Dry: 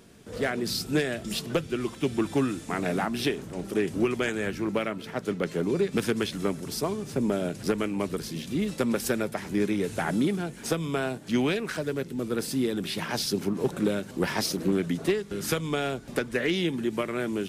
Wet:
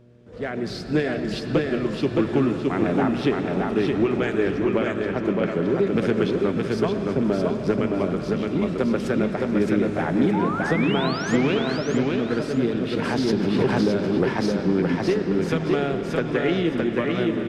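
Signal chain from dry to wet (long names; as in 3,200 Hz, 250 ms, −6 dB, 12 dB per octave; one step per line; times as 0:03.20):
automatic gain control gain up to 10 dB
0:10.33–0:11.36: sound drawn into the spectrogram rise 810–7,400 Hz −21 dBFS
repeating echo 617 ms, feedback 27%, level −3 dB
on a send at −7 dB: convolution reverb RT60 4.4 s, pre-delay 60 ms
on the sum: hum with harmonics 120 Hz, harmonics 5, −47 dBFS
head-to-tape spacing loss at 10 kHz 22 dB
0:12.93–0:14.34: background raised ahead of every attack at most 29 dB per second
level −5.5 dB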